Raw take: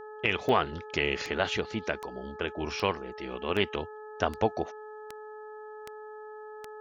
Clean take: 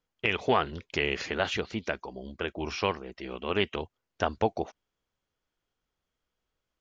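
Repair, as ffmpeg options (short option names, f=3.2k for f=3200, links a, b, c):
-af "adeclick=t=4,bandreject=f=428:t=h:w=4,bandreject=f=856:t=h:w=4,bandreject=f=1.284k:t=h:w=4,bandreject=f=1.712k:t=h:w=4"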